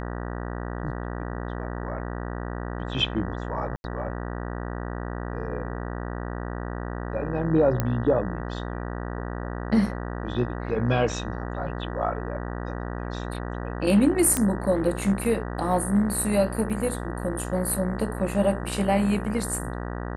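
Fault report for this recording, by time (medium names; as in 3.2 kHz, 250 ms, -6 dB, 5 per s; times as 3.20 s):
buzz 60 Hz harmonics 32 -32 dBFS
3.76–3.84 s: dropout 81 ms
7.80 s: pop -10 dBFS
14.37 s: pop -9 dBFS
16.70 s: dropout 2.3 ms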